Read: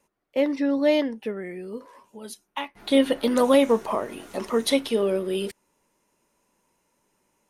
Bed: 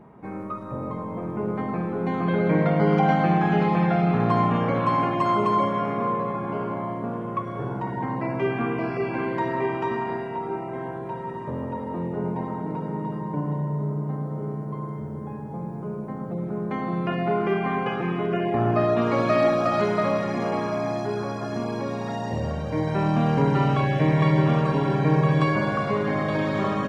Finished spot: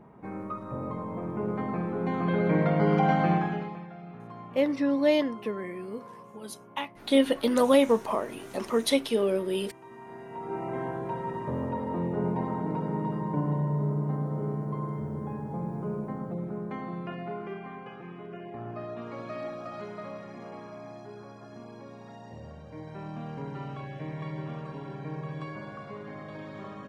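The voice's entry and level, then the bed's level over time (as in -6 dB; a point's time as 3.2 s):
4.20 s, -2.5 dB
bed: 3.34 s -3.5 dB
3.89 s -23 dB
9.84 s -23 dB
10.67 s -1 dB
15.97 s -1 dB
17.79 s -17 dB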